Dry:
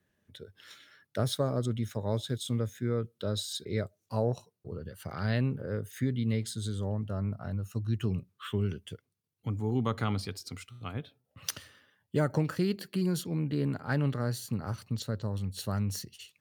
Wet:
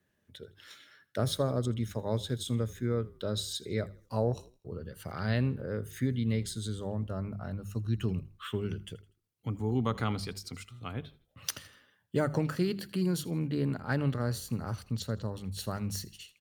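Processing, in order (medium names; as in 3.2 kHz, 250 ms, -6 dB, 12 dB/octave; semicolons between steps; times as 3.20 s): hum notches 50/100/150/200 Hz; on a send: frequency-shifting echo 81 ms, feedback 37%, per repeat -35 Hz, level -20.5 dB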